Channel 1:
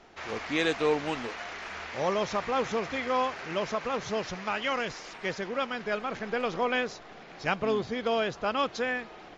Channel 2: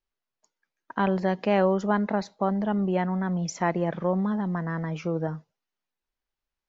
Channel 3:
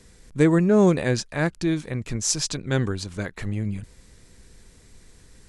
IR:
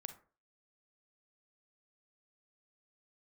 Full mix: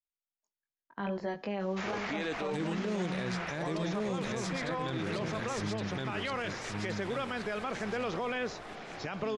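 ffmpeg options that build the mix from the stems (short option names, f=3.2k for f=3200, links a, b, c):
-filter_complex "[0:a]alimiter=limit=-24dB:level=0:latency=1:release=30,adelay=1600,volume=1dB,asplit=2[a][b];[b]volume=-5.5dB[c];[1:a]agate=range=-14dB:threshold=-38dB:ratio=16:detection=peak,flanger=delay=19:depth=2.8:speed=0.79,volume=-5.5dB,asplit=3[d][e][f];[e]volume=-6dB[g];[2:a]equalizer=f=3.5k:w=2.2:g=10.5,adelay=2150,volume=-4.5dB,asplit=3[h][i][j];[i]volume=-4.5dB[k];[j]volume=-3dB[l];[f]apad=whole_len=336620[m];[h][m]sidechaincompress=threshold=-39dB:ratio=8:attack=16:release=390[n];[3:a]atrim=start_sample=2205[o];[c][g][k]amix=inputs=3:normalize=0[p];[p][o]afir=irnorm=-1:irlink=0[q];[l]aecho=0:1:1119|2238|3357|4476:1|0.27|0.0729|0.0197[r];[a][d][n][q][r]amix=inputs=5:normalize=0,acrossover=split=110|3000[s][t][u];[s]acompressor=threshold=-54dB:ratio=4[v];[t]acompressor=threshold=-30dB:ratio=4[w];[u]acompressor=threshold=-48dB:ratio=4[x];[v][w][x]amix=inputs=3:normalize=0,alimiter=level_in=1.5dB:limit=-24dB:level=0:latency=1:release=16,volume=-1.5dB"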